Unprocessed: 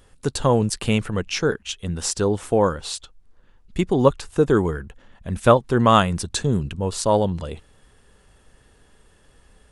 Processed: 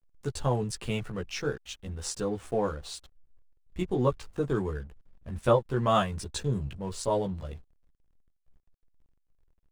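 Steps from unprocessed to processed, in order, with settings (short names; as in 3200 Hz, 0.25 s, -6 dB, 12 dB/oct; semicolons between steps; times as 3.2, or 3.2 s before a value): chorus voices 6, 0.33 Hz, delay 15 ms, depth 1.5 ms; backlash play -40 dBFS; gain -7 dB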